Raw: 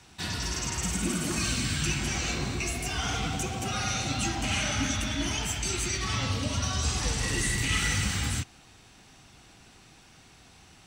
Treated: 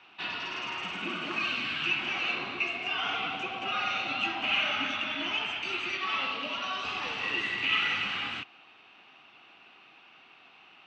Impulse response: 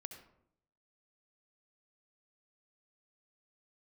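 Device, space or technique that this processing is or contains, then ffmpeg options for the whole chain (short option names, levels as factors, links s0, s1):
phone earpiece: -filter_complex "[0:a]asettb=1/sr,asplit=3[s0][s1][s2];[s0]atrim=end=5.984[s3];[s1]atrim=start=5.98:end=6.85,asetpts=PTS-STARTPTS,afade=t=in:d=0.004:c=qsin,afade=t=out:st=0.866:d=0.004:c=qsin,highpass=190[s4];[s2]atrim=start=6.846[s5];[s3][s4]acrossfade=d=0.004:c1=hsin:c2=qsin[s6];[s6][s5]acrossfade=d=0.004:c1=qsin:c2=hsin,highpass=410,equalizer=f=490:t=q:w=4:g=-4,equalizer=f=1200:t=q:w=4:g=5,equalizer=f=1800:t=q:w=4:g=-3,equalizer=f=2700:t=q:w=4:g=9,lowpass=f=3300:w=0.5412,lowpass=f=3300:w=1.3066"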